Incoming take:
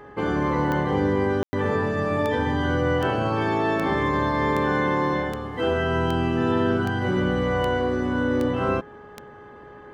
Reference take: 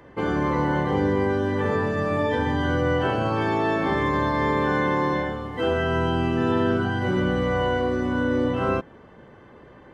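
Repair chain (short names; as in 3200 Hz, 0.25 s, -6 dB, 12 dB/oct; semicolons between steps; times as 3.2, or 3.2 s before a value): de-click; de-hum 415.2 Hz, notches 4; room tone fill 1.43–1.53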